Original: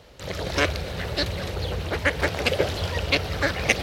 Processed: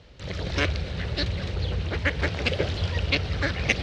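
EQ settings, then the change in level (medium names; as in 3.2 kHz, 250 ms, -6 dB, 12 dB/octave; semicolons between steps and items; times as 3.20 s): distance through air 120 m; peaking EQ 750 Hz -9 dB 2.7 oct; treble shelf 9.6 kHz -4.5 dB; +3.0 dB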